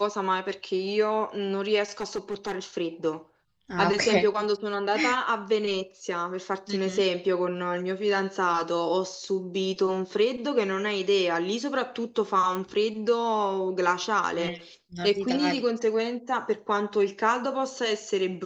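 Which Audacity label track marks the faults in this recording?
2.010000	2.570000	clipped -25.5 dBFS
12.550000	12.550000	pop -17 dBFS

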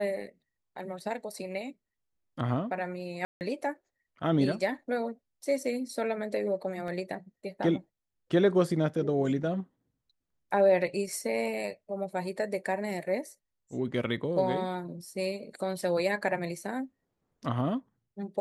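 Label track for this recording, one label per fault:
3.250000	3.410000	dropout 159 ms
6.880000	6.880000	dropout 2.1 ms

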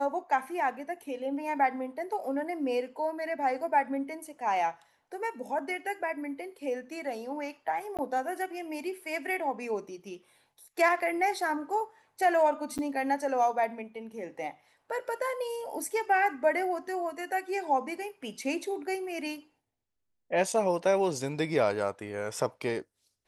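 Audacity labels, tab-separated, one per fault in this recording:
7.970000	7.990000	dropout 17 ms
12.780000	12.790000	dropout 7.8 ms

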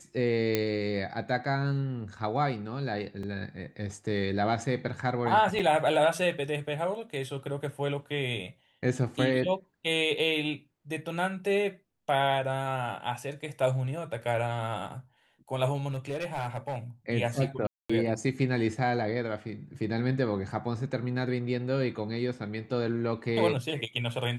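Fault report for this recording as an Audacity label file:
0.550000	0.550000	pop -11 dBFS
3.230000	3.230000	dropout 3.7 ms
5.590000	5.600000	dropout 6.2 ms
15.880000	16.760000	clipped -28 dBFS
17.670000	17.890000	dropout 225 ms

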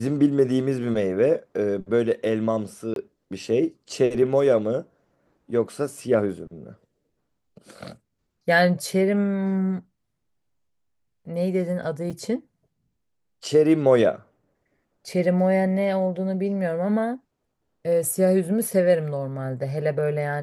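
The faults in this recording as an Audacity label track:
2.940000	2.960000	dropout 22 ms
12.100000	12.110000	dropout 5.4 ms

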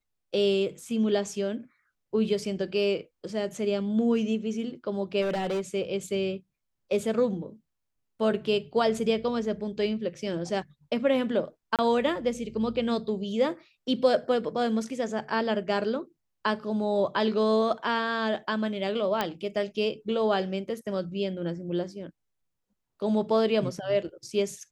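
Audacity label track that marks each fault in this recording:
5.210000	5.610000	clipped -25 dBFS
11.760000	11.790000	dropout 27 ms
19.210000	19.210000	pop -12 dBFS

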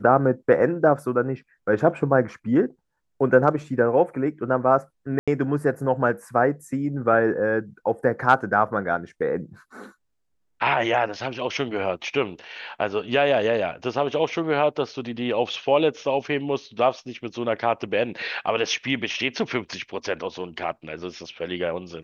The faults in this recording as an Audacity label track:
5.190000	5.280000	dropout 86 ms

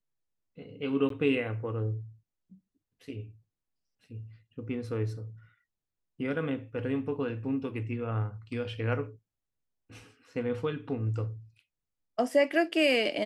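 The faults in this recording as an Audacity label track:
1.090000	1.100000	dropout 13 ms

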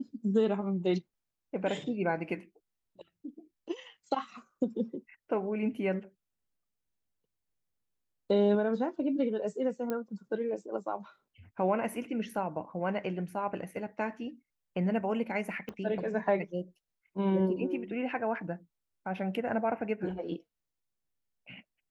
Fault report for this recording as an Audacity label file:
9.900000	9.900000	pop -21 dBFS
15.690000	15.690000	pop -27 dBFS

